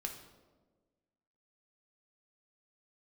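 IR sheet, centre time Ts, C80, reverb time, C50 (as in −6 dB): 25 ms, 10.0 dB, 1.4 s, 7.0 dB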